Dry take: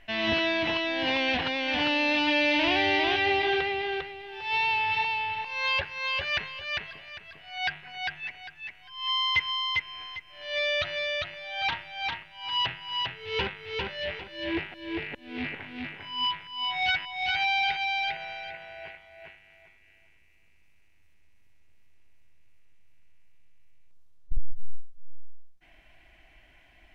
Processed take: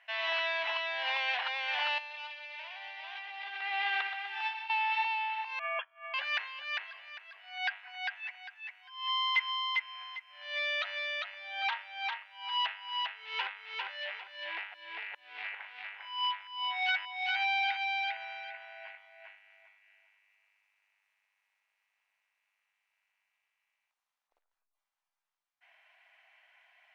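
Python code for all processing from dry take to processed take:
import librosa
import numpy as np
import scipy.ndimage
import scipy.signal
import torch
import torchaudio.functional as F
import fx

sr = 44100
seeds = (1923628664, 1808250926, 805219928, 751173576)

y = fx.chain(x, sr, fx.highpass(hz=530.0, slope=12),
    fx.over_compress(threshold_db=-33.0, ratio=-0.5),
    fx.echo_feedback(ms=125, feedback_pct=57, wet_db=-9.0), at=(1.98, 4.7))
y = fx.chain(y, sr, fx.freq_invert(carrier_hz=3300),
    fx.low_shelf(hz=340.0, db=-10.0),
    fx.upward_expand(threshold_db=-42.0, expansion=2.5), at=(5.59, 6.14))
y = scipy.signal.sosfilt(scipy.signal.cheby2(4, 70, 180.0, 'highpass', fs=sr, output='sos'), y)
y = fx.high_shelf(y, sr, hz=3200.0, db=-11.5)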